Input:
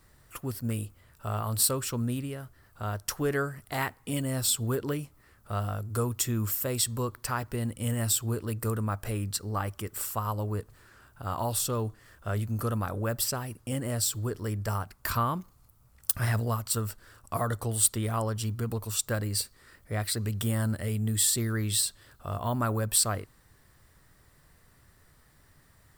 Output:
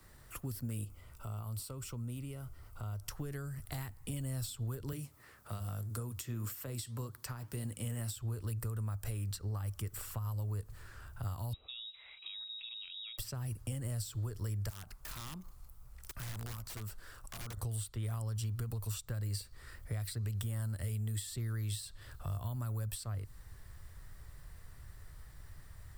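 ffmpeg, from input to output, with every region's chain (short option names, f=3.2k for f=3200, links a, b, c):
-filter_complex "[0:a]asettb=1/sr,asplit=3[a][b][c];[a]atrim=end=0.844[d];[b]atrim=start=0.84:end=3.09,asetpts=PTS-STARTPTS,afade=t=in:d=0.004:c=qsin,afade=t=out:st=2.246:d=0.004:c=qsin,asuperstop=centerf=1700:order=4:qfactor=5.1,acompressor=threshold=-42dB:ratio=2.5:attack=3.2:release=140:knee=1:detection=peak,equalizer=f=4k:w=6.8:g=-4.5[e];[c]atrim=start=3.086[f];[d][e]acrossfade=d=0.004:c1=hsin:c2=qsin[g];[g][f]acrossfade=d=0.004:c1=qsin:c2=hsin,asettb=1/sr,asplit=3[h][i][j];[h]atrim=end=4.924[k];[i]atrim=start=4.92:end=8.16,asetpts=PTS-STARTPTS,afade=t=in:d=0.004:c=qsin,afade=t=out:st=3.236:d=0.004:c=qsin,highpass=190,acontrast=59,flanger=delay=2.3:depth=7.6:regen=-76:speed=1.8:shape=triangular[l];[j]atrim=start=8.156[m];[k][l]acrossfade=d=0.004:c1=hsin:c2=qsin[n];[n][m]acrossfade=d=0.004:c1=qsin:c2=hsin,asettb=1/sr,asplit=3[o][p][q];[o]atrim=end=11.534[r];[p]atrim=start=11.53:end=13.18,asetpts=PTS-STARTPTS,afade=t=in:d=0.004:c=qsin,afade=t=out:st=1.646:d=0.004:c=qsin,acompressor=threshold=-40dB:ratio=8:attack=3.2:release=140:knee=1:detection=peak,lowpass=f=3.3k:t=q:w=0.5098,lowpass=f=3.3k:t=q:w=0.6013,lowpass=f=3.3k:t=q:w=0.9,lowpass=f=3.3k:t=q:w=2.563,afreqshift=-3900[s];[q]atrim=start=13.176[t];[r][s]acrossfade=d=0.004:c1=hsin:c2=qsin[u];[u][t]acrossfade=d=0.004:c1=qsin:c2=hsin,asettb=1/sr,asplit=3[v][w][x];[v]atrim=end=14.694[y];[w]atrim=start=14.69:end=17.57,asetpts=PTS-STARTPTS,afade=t=in:d=0.004:c=qsin,afade=t=out:st=2.876:d=0.004:c=qsin,equalizer=f=92:t=o:w=0.92:g=-11.5,acompressor=threshold=-46dB:ratio=2:attack=3.2:release=140:knee=1:detection=peak,aeval=exprs='(mod(63.1*val(0)+1,2)-1)/63.1':c=same[z];[x]atrim=start=17.566[aa];[y][z]acrossfade=d=0.004:c1=hsin:c2=qsin[ab];[ab][aa]acrossfade=d=0.004:c1=qsin:c2=hsin,acompressor=threshold=-32dB:ratio=6,asubboost=boost=6.5:cutoff=84,acrossover=split=97|240|4200[ac][ad][ae][af];[ac]acompressor=threshold=-48dB:ratio=4[ag];[ad]acompressor=threshold=-40dB:ratio=4[ah];[ae]acompressor=threshold=-51dB:ratio=4[ai];[af]acompressor=threshold=-47dB:ratio=4[aj];[ag][ah][ai][aj]amix=inputs=4:normalize=0,volume=1dB"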